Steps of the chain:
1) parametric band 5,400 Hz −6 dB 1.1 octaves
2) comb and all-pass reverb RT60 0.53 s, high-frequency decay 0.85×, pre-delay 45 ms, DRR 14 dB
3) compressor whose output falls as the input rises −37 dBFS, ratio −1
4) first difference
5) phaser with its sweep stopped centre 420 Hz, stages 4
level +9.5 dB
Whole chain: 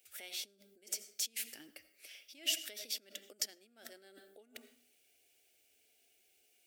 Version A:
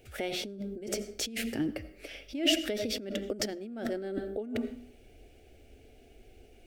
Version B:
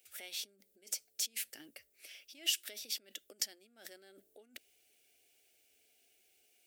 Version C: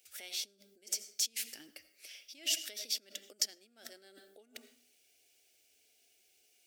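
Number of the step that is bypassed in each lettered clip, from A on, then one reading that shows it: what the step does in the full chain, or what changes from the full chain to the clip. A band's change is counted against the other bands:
4, 8 kHz band −18.0 dB
2, 500 Hz band −2.0 dB
1, 8 kHz band +4.0 dB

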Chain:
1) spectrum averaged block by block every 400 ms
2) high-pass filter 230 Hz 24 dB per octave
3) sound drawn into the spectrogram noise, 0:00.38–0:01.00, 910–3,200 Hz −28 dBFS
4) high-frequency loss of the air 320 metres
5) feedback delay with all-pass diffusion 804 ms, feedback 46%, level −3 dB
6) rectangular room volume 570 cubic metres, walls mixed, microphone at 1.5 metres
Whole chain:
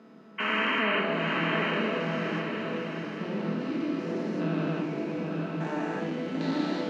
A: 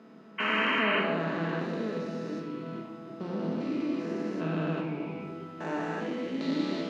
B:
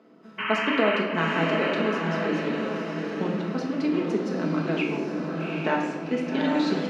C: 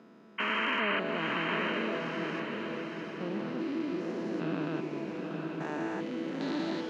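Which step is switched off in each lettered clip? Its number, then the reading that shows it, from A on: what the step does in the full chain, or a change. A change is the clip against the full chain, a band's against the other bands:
5, echo-to-direct ratio 4.0 dB to 0.5 dB
1, 500 Hz band +3.0 dB
6, echo-to-direct ratio 4.0 dB to −2.0 dB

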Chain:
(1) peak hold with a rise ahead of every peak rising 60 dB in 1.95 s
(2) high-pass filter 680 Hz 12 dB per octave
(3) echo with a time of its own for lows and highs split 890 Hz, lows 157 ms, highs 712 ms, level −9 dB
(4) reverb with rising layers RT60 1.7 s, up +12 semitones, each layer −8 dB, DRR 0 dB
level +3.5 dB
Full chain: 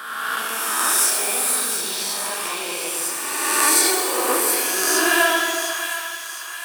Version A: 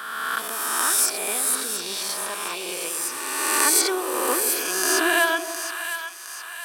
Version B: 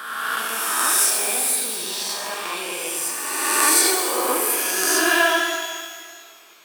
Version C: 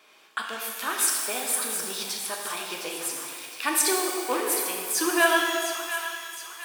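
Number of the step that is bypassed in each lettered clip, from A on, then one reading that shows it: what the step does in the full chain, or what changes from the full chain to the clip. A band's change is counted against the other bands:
4, change in crest factor +3.0 dB
3, change in momentary loudness spread +2 LU
1, 250 Hz band +3.0 dB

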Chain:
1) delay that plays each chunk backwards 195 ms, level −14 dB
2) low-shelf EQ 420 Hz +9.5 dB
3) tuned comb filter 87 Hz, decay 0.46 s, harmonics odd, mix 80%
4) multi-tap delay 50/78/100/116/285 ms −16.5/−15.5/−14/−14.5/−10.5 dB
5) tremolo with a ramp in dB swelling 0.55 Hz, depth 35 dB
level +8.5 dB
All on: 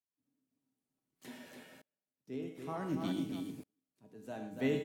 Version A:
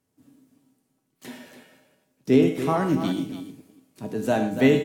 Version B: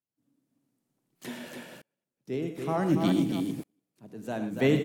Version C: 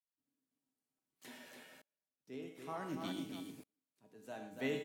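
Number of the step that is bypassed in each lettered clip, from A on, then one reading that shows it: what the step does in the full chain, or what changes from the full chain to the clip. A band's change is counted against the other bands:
5, change in momentary loudness spread +3 LU
3, 125 Hz band +2.5 dB
2, 125 Hz band −7.0 dB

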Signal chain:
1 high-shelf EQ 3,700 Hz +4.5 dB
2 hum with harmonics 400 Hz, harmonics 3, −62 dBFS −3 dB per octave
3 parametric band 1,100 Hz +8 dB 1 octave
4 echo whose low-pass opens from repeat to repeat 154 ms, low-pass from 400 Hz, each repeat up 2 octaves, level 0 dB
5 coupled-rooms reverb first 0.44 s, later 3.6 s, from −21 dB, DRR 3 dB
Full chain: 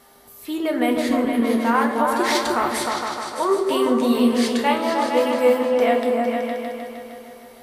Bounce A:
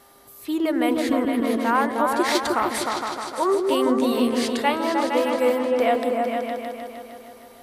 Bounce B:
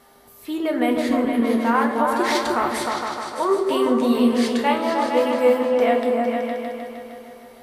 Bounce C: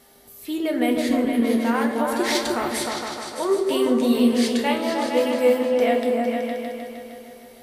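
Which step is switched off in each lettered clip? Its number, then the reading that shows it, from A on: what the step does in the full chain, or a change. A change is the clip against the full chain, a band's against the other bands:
5, echo-to-direct ratio 2.0 dB to −1.0 dB
1, 8 kHz band −3.5 dB
3, 1 kHz band −5.0 dB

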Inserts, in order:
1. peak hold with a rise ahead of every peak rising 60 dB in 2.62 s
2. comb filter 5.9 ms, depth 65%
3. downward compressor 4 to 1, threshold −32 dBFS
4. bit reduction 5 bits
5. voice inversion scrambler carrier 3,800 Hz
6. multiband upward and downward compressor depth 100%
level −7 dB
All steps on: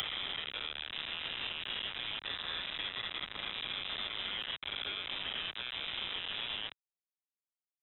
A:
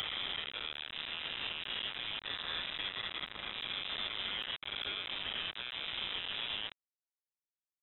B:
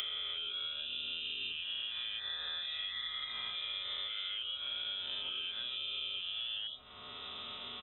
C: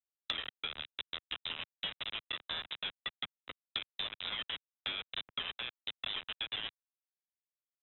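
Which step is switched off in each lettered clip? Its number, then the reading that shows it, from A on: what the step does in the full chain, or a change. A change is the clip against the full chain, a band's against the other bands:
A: 6, change in momentary loudness spread +1 LU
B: 4, change in crest factor −2.5 dB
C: 1, change in crest factor +9.0 dB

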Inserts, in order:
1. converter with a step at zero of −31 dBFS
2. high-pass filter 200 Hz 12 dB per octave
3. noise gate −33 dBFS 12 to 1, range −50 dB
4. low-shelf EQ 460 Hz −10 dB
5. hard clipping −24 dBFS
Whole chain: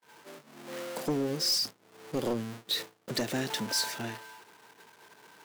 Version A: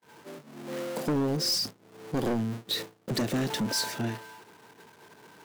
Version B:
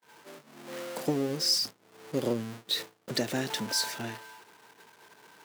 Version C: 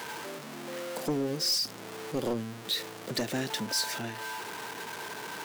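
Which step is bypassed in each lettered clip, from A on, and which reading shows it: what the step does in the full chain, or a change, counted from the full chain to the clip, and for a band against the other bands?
4, 125 Hz band +5.5 dB
5, distortion level −14 dB
3, change in momentary loudness spread −10 LU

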